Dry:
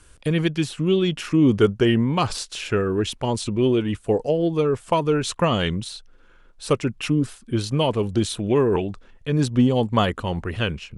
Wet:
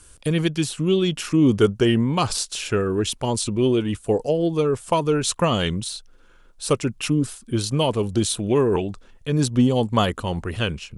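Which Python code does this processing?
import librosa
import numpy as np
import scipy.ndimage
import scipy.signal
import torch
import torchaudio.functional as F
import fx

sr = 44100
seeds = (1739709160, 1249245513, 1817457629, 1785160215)

y = fx.curve_eq(x, sr, hz=(1300.0, 1900.0, 9200.0), db=(0, -2, 8))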